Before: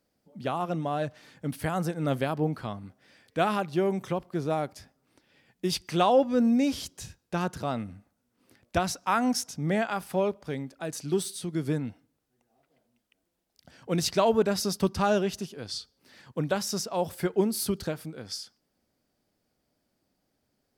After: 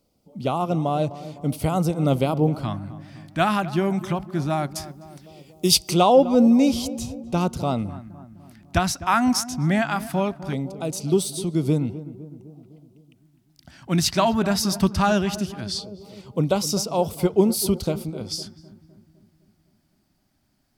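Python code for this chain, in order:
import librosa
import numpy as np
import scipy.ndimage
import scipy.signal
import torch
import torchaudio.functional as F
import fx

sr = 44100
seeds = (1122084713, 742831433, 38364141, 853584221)

y = fx.low_shelf(x, sr, hz=96.0, db=7.0)
y = fx.echo_filtered(y, sr, ms=254, feedback_pct=60, hz=1100.0, wet_db=-14.0)
y = fx.filter_lfo_notch(y, sr, shape='square', hz=0.19, low_hz=470.0, high_hz=1700.0, q=1.4)
y = fx.high_shelf(y, sr, hz=3500.0, db=12.0, at=(4.75, 5.94))
y = y * 10.0 ** (6.5 / 20.0)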